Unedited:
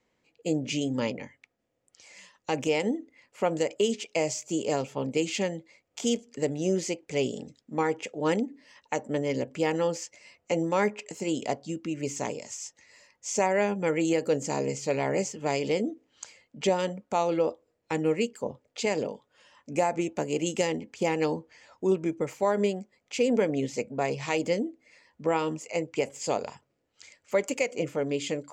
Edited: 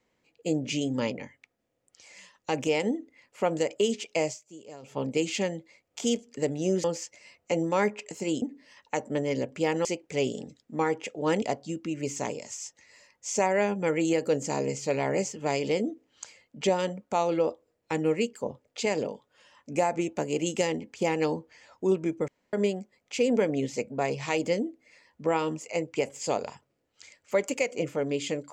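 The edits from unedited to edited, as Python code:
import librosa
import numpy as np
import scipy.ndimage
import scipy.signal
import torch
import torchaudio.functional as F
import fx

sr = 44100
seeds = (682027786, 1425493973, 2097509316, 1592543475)

y = fx.edit(x, sr, fx.fade_down_up(start_s=4.25, length_s=0.71, db=-17.5, fade_s=0.14),
    fx.swap(start_s=6.84, length_s=1.57, other_s=9.84, other_length_s=1.58),
    fx.room_tone_fill(start_s=22.28, length_s=0.25), tone=tone)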